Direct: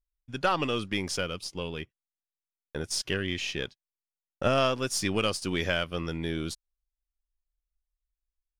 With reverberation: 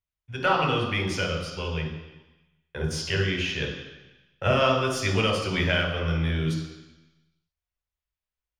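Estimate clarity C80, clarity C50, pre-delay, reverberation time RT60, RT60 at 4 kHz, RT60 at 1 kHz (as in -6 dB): 7.0 dB, 4.5 dB, 3 ms, 1.1 s, 1.2 s, 1.1 s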